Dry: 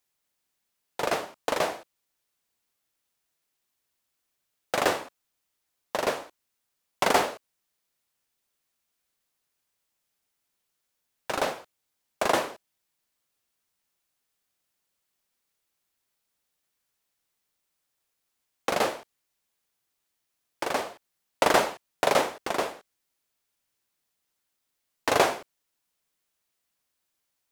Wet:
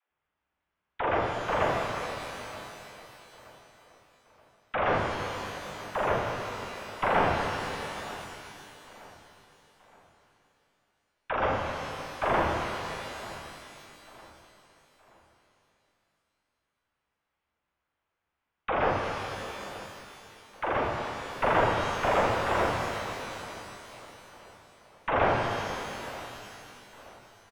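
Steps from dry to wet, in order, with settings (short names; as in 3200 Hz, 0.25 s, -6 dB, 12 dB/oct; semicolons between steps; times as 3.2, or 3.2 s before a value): octaver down 2 oct, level 0 dB; bell 1300 Hz +6.5 dB 2.1 oct; notch 1800 Hz, Q 27; in parallel at +2 dB: limiter -13 dBFS, peak gain reduction 11.5 dB; on the sum: dispersion lows, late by 0.104 s, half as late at 300 Hz; one-sided clip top -18 dBFS; air absorption 480 m; on a send: feedback echo 0.924 s, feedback 40%, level -19 dB; on the sum: downsampling 8000 Hz; shimmer reverb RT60 2.9 s, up +12 st, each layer -8 dB, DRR 1 dB; gain -7 dB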